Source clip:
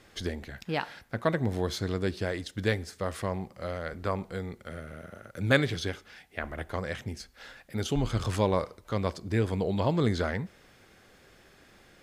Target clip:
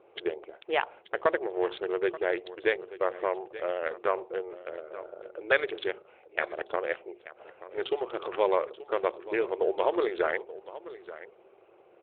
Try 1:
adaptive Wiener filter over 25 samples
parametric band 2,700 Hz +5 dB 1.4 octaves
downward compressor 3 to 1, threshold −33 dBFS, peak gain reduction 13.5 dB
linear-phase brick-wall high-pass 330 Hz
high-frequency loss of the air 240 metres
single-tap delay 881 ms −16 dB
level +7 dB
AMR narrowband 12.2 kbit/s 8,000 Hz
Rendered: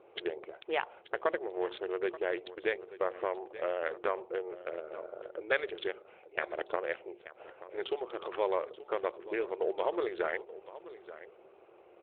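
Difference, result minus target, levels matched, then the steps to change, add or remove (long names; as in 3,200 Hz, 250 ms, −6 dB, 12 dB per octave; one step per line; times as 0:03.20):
downward compressor: peak gain reduction +5.5 dB
change: downward compressor 3 to 1, threshold −24.5 dBFS, peak gain reduction 8 dB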